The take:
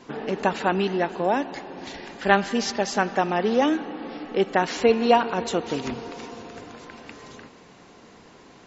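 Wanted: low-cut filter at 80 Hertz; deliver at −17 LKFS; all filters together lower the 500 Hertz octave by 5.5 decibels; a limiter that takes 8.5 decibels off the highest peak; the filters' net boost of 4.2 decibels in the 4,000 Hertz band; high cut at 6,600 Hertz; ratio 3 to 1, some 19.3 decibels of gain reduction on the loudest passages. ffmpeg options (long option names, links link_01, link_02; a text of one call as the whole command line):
ffmpeg -i in.wav -af "highpass=80,lowpass=6600,equalizer=frequency=500:width_type=o:gain=-7,equalizer=frequency=4000:width_type=o:gain=6.5,acompressor=threshold=-42dB:ratio=3,volume=26dB,alimiter=limit=-5dB:level=0:latency=1" out.wav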